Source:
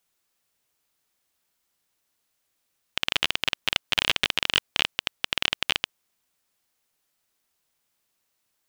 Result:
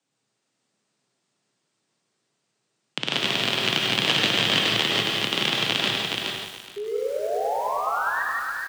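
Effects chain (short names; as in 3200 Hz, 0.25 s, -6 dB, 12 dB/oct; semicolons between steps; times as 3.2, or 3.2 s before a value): elliptic low-pass 8500 Hz; low shelf 480 Hz +11.5 dB; painted sound rise, 6.76–8.23, 290–1800 Hz -29 dBFS; frequency shift +110 Hz; feedback echo 0.421 s, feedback 16%, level -4 dB; non-linear reverb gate 0.19 s rising, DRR -0.5 dB; lo-fi delay 0.1 s, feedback 80%, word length 6-bit, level -8 dB; gain -2 dB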